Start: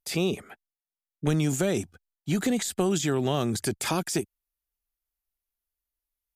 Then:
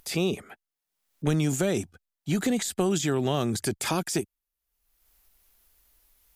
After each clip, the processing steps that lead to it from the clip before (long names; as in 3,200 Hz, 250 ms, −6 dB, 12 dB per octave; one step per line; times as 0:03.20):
upward compression, threshold −43 dBFS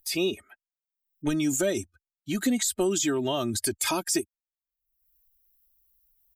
spectral dynamics exaggerated over time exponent 1.5
high-shelf EQ 3,800 Hz +6.5 dB
comb filter 3.2 ms, depth 66%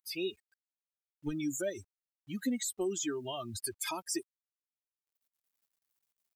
spectral dynamics exaggerated over time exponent 2
bit reduction 11 bits
level −6 dB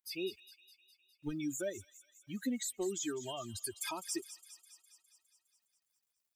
delay with a high-pass on its return 205 ms, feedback 63%, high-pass 3,000 Hz, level −11.5 dB
level −3 dB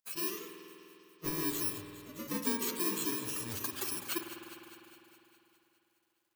samples in bit-reversed order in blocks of 64 samples
delay with pitch and tempo change per echo 117 ms, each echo +2 semitones, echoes 2, each echo −6 dB
spring reverb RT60 3.1 s, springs 50 ms, chirp 35 ms, DRR 4.5 dB
level +2 dB